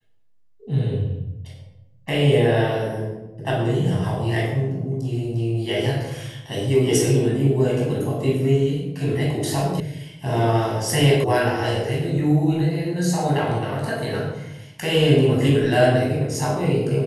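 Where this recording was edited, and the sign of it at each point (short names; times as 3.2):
9.8 sound cut off
11.24 sound cut off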